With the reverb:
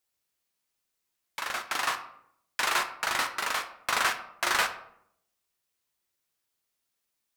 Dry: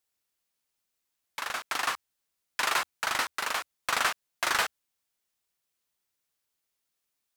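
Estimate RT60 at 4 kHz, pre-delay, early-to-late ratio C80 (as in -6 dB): 0.40 s, 5 ms, 14.5 dB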